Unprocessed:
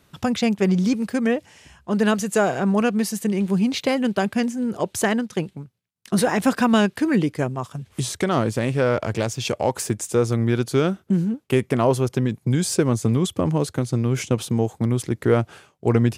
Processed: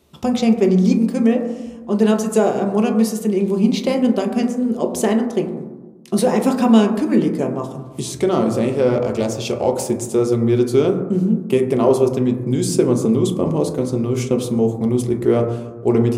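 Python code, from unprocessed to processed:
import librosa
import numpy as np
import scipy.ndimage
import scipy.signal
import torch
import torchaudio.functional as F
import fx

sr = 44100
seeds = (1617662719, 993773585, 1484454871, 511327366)

y = fx.graphic_eq_15(x, sr, hz=(100, 400, 1600), db=(-8, 5, -10))
y = fx.rev_fdn(y, sr, rt60_s=1.2, lf_ratio=1.35, hf_ratio=0.3, size_ms=80.0, drr_db=2.5)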